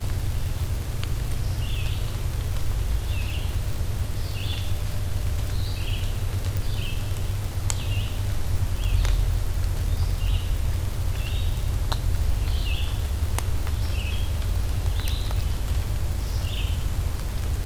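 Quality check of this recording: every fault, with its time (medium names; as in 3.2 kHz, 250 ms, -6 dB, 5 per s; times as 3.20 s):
crackle 77 per s -28 dBFS
6.57 s: pop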